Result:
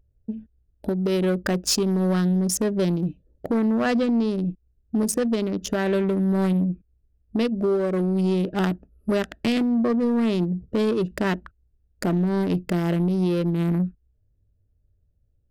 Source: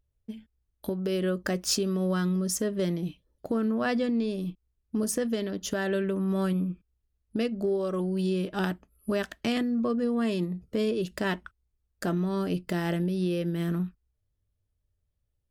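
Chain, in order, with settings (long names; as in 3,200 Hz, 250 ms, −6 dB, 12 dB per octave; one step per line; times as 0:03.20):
adaptive Wiener filter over 41 samples
in parallel at −2.5 dB: downward compressor, threshold −43 dBFS, peak gain reduction 18 dB
on the sum: soft clipping −21.5 dBFS, distortion −20 dB
level +7 dB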